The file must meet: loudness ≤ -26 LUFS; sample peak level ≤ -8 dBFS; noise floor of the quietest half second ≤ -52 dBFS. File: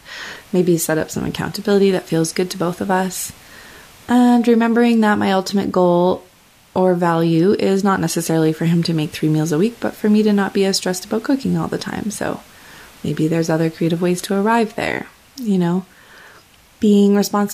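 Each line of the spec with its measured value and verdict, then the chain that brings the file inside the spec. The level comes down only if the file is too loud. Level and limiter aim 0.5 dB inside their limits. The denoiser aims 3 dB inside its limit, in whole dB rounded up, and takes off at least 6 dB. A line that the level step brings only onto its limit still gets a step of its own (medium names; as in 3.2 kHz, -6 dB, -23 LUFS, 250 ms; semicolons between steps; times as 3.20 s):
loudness -17.5 LUFS: fail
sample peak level -3.5 dBFS: fail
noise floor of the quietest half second -50 dBFS: fail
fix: trim -9 dB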